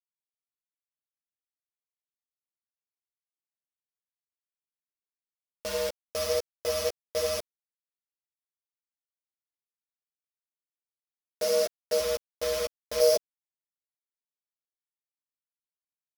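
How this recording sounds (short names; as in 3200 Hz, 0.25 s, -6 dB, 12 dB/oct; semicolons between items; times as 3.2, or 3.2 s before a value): a buzz of ramps at a fixed pitch in blocks of 8 samples; random-step tremolo 1 Hz, depth 75%; a quantiser's noise floor 6-bit, dither none; a shimmering, thickened sound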